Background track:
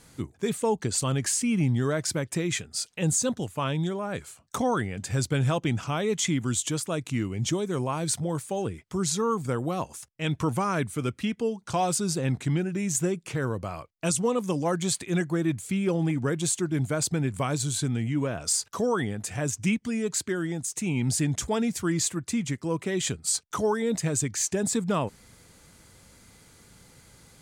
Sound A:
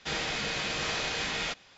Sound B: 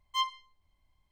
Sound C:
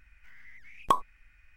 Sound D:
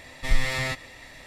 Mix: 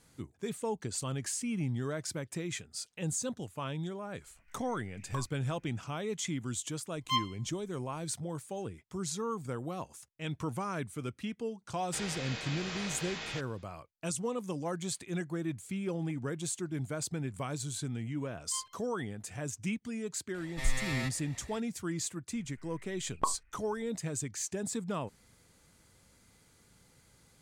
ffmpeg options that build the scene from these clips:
-filter_complex "[3:a]asplit=2[a][b];[2:a]asplit=2[c][d];[0:a]volume=-9.5dB[e];[a]alimiter=limit=-21.5dB:level=0:latency=1:release=71[f];[d]aecho=1:1:5.5:0.45[g];[b]lowpass=f=1k:p=1[h];[f]atrim=end=1.56,asetpts=PTS-STARTPTS,volume=-9dB,afade=t=in:d=0.004:c=hsin,afade=t=out:st=1.556:d=0.004:c=hsin,adelay=4240[i];[c]atrim=end=1.11,asetpts=PTS-STARTPTS,volume=-0.5dB,afade=t=in:d=0.004:c=hsin,afade=t=out:st=1.106:d=0.004:c=hsin,adelay=6950[j];[1:a]atrim=end=1.77,asetpts=PTS-STARTPTS,volume=-8.5dB,afade=t=in:d=0.004:c=hsin,afade=t=out:st=1.766:d=0.004:c=hsin,adelay=11870[k];[g]atrim=end=1.11,asetpts=PTS-STARTPTS,volume=-15.5dB,afade=t=in:d=0.004:c=hsin,afade=t=out:st=1.106:d=0.004:c=hsin,adelay=18370[l];[4:a]atrim=end=1.26,asetpts=PTS-STARTPTS,volume=-8.5dB,afade=t=in:d=0.004:c=hsin,afade=t=out:st=1.256:d=0.004:c=hsin,adelay=20340[m];[h]atrim=end=1.56,asetpts=PTS-STARTPTS,volume=-4dB,afade=t=in:d=0.004:c=hsin,afade=t=out:st=1.556:d=0.004:c=hsin,adelay=22330[n];[e][i][j][k][l][m][n]amix=inputs=7:normalize=0"

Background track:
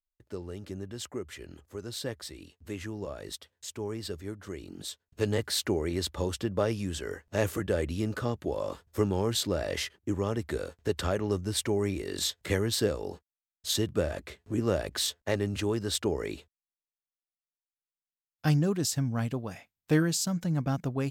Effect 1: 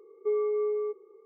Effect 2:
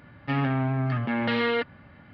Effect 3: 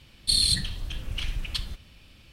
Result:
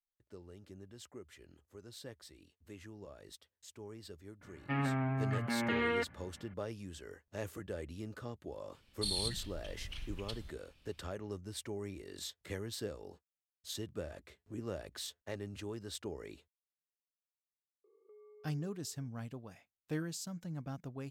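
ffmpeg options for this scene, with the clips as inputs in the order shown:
-filter_complex "[0:a]volume=-13.5dB[a];[2:a]highshelf=f=3.1k:t=q:w=1.5:g=-6.5[b];[1:a]acompressor=threshold=-43dB:ratio=6:attack=3.2:release=140:knee=1:detection=peak[c];[b]atrim=end=2.13,asetpts=PTS-STARTPTS,volume=-8.5dB,afade=t=in:d=0.004:c=hsin,afade=t=out:st=2.126:d=0.004:c=hsin,adelay=194481S[d];[3:a]atrim=end=2.32,asetpts=PTS-STARTPTS,volume=-14dB,afade=t=in:d=0.004:c=hsin,afade=t=out:st=2.316:d=0.004:c=hsin,adelay=385434S[e];[c]atrim=end=1.25,asetpts=PTS-STARTPTS,volume=-15.5dB,afade=t=in:d=0.004:c=hsin,afade=t=out:st=1.246:d=0.004:c=hsin,adelay=17840[f];[a][d][e][f]amix=inputs=4:normalize=0"

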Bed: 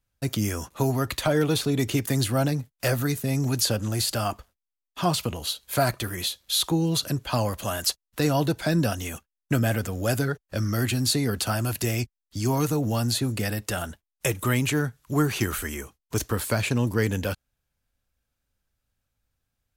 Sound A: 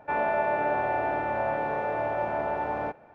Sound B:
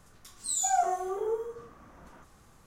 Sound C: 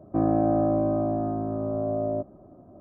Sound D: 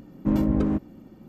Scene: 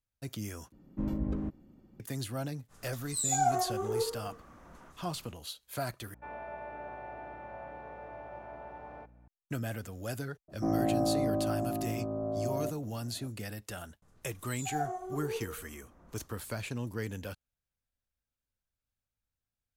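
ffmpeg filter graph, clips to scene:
-filter_complex "[2:a]asplit=2[a][b];[0:a]volume=-13dB[c];[4:a]lowshelf=f=100:g=9.5[d];[a]acompressor=mode=upward:threshold=-50dB:ratio=2.5:attack=3.2:release=140:knee=2.83:detection=peak[e];[1:a]aeval=exprs='val(0)+0.01*(sin(2*PI*60*n/s)+sin(2*PI*2*60*n/s)/2+sin(2*PI*3*60*n/s)/3+sin(2*PI*4*60*n/s)/4+sin(2*PI*5*60*n/s)/5)':c=same[f];[b]tiltshelf=f=930:g=4.5[g];[c]asplit=3[h][i][j];[h]atrim=end=0.724[k];[d]atrim=end=1.28,asetpts=PTS-STARTPTS,volume=-13.5dB[l];[i]atrim=start=1.996:end=6.144[m];[f]atrim=end=3.14,asetpts=PTS-STARTPTS,volume=-17dB[n];[j]atrim=start=9.276[o];[e]atrim=end=2.66,asetpts=PTS-STARTPTS,volume=-1.5dB,afade=t=in:d=0.05,afade=t=out:st=2.61:d=0.05,adelay=2680[p];[3:a]atrim=end=2.8,asetpts=PTS-STARTPTS,volume=-6.5dB,afade=t=in:d=0.004:c=hsin,afade=t=out:st=2.796:d=0.004:c=hsin,adelay=10480[q];[g]atrim=end=2.66,asetpts=PTS-STARTPTS,volume=-9.5dB,afade=t=in:d=0.004:c=hsin,afade=t=out:st=2.656:d=0.004:c=hsin,adelay=14020[r];[k][l]acrossfade=d=0.004:c1=hsin:c2=hsin[s];[s][m]acrossfade=d=0.004:c1=hsin:c2=hsin[t];[t][n]acrossfade=d=0.004:c1=hsin:c2=hsin[u];[u][o]acrossfade=d=0.004:c1=hsin:c2=hsin[v];[v][p][q][r]amix=inputs=4:normalize=0"

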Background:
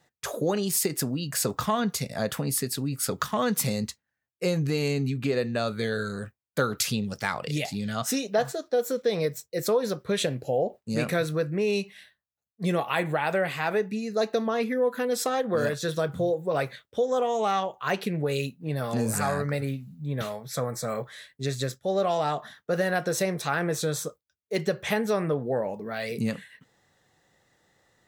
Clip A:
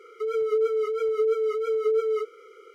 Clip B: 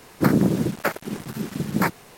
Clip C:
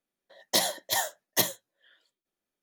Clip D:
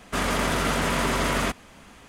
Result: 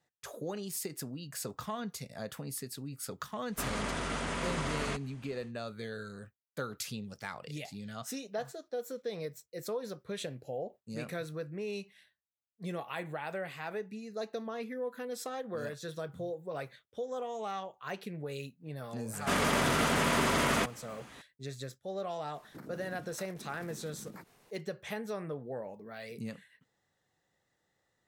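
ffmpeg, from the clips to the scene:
-filter_complex "[4:a]asplit=2[a][b];[0:a]volume=-12.5dB[c];[a]aresample=22050,aresample=44100[d];[b]highpass=86[e];[2:a]acompressor=threshold=-28dB:ratio=6:attack=3.2:release=140:knee=1:detection=peak[f];[d]atrim=end=2.08,asetpts=PTS-STARTPTS,volume=-11dB,afade=t=in:d=0.1,afade=t=out:st=1.98:d=0.1,adelay=152145S[g];[e]atrim=end=2.08,asetpts=PTS-STARTPTS,volume=-3.5dB,afade=t=in:d=0.004:c=hsin,afade=t=out:st=2.076:d=0.004:c=hsin,adelay=19140[h];[f]atrim=end=2.17,asetpts=PTS-STARTPTS,volume=-17dB,afade=t=in:d=0.004:c=hsin,afade=t=out:st=2.166:d=0.004:c=hsin,adelay=22340[i];[c][g][h][i]amix=inputs=4:normalize=0"

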